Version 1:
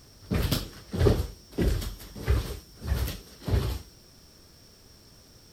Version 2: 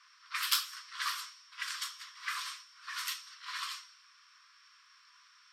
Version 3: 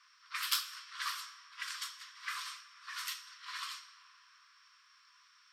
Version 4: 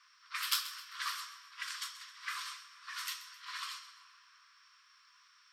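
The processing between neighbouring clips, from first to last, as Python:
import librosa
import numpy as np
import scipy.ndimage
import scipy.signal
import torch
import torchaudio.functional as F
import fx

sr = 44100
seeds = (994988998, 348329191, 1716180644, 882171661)

y1 = scipy.signal.sosfilt(scipy.signal.cheby1(10, 1.0, 1000.0, 'highpass', fs=sr, output='sos'), x)
y1 = fx.env_lowpass(y1, sr, base_hz=2400.0, full_db=-35.0)
y1 = F.gain(torch.from_numpy(y1), 4.0).numpy()
y2 = fx.rev_freeverb(y1, sr, rt60_s=4.6, hf_ratio=0.45, predelay_ms=5, drr_db=13.0)
y2 = F.gain(torch.from_numpy(y2), -3.0).numpy()
y3 = fx.echo_feedback(y2, sr, ms=131, feedback_pct=40, wet_db=-15)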